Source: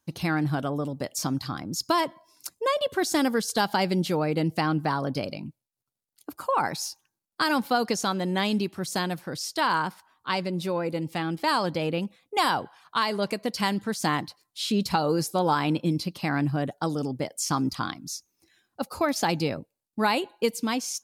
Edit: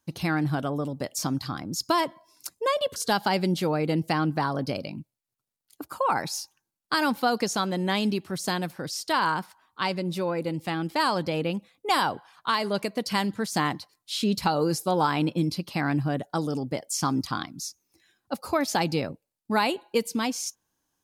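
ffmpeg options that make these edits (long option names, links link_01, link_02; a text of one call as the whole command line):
ffmpeg -i in.wav -filter_complex "[0:a]asplit=2[link_01][link_02];[link_01]atrim=end=2.962[link_03];[link_02]atrim=start=3.438[link_04];[link_03][link_04]acrossfade=duration=0.004:curve1=hsin:curve2=hsin" out.wav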